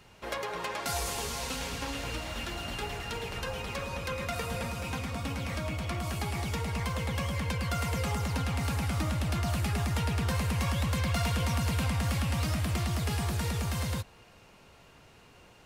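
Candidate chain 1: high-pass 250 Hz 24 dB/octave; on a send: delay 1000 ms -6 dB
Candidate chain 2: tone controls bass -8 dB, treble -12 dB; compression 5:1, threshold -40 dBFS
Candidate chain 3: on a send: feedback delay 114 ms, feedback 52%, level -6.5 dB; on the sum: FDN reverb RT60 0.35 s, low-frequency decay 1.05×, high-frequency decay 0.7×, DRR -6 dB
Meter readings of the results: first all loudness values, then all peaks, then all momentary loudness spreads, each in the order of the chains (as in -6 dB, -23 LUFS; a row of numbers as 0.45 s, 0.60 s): -35.0 LUFS, -43.0 LUFS, -24.0 LUFS; -19.5 dBFS, -27.5 dBFS, -8.5 dBFS; 4 LU, 3 LU, 7 LU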